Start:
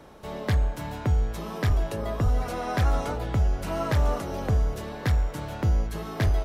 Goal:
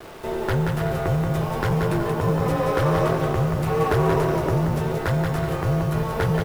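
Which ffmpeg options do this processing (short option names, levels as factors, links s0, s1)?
-filter_complex "[0:a]asplit=2[s0][s1];[s1]aeval=exprs='0.0282*(abs(mod(val(0)/0.0282+3,4)-2)-1)':c=same,volume=0.562[s2];[s0][s2]amix=inputs=2:normalize=0,equalizer=f=4300:t=o:w=2.2:g=-5.5,asplit=2[s3][s4];[s4]aecho=0:1:180|297|373|422.5|454.6:0.631|0.398|0.251|0.158|0.1[s5];[s3][s5]amix=inputs=2:normalize=0,afreqshift=-210,acrusher=bits=7:mix=0:aa=0.000001,firequalizer=gain_entry='entry(230,0);entry(360,10);entry(6200,3)':delay=0.05:min_phase=1,volume=0.841"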